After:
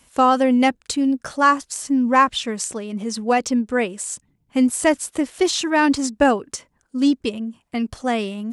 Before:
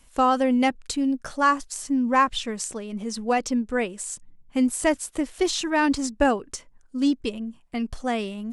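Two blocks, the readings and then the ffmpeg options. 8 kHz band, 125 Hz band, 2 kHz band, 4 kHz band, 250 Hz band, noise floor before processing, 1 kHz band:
+4.5 dB, n/a, +4.5 dB, +4.5 dB, +4.5 dB, -55 dBFS, +4.5 dB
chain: -af "highpass=74,volume=4.5dB"

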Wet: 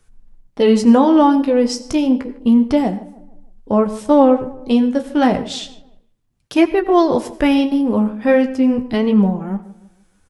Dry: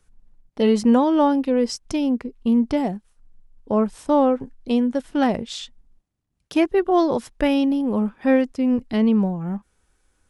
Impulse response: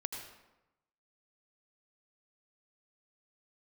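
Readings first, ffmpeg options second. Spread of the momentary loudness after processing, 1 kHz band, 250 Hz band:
10 LU, +5.5 dB, +5.5 dB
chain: -filter_complex "[0:a]flanger=delay=8.3:depth=9.3:regen=-38:speed=0.31:shape=sinusoidal,asplit=2[a][b];[b]adelay=154,lowpass=f=1.7k:p=1,volume=-18dB,asplit=2[c][d];[d]adelay=154,lowpass=f=1.7k:p=1,volume=0.44,asplit=2[e][f];[f]adelay=154,lowpass=f=1.7k:p=1,volume=0.44,asplit=2[g][h];[h]adelay=154,lowpass=f=1.7k:p=1,volume=0.44[i];[a][c][e][g][i]amix=inputs=5:normalize=0,asplit=2[j][k];[1:a]atrim=start_sample=2205,atrim=end_sample=6615[l];[k][l]afir=irnorm=-1:irlink=0,volume=-7.5dB[m];[j][m]amix=inputs=2:normalize=0,volume=6.5dB"

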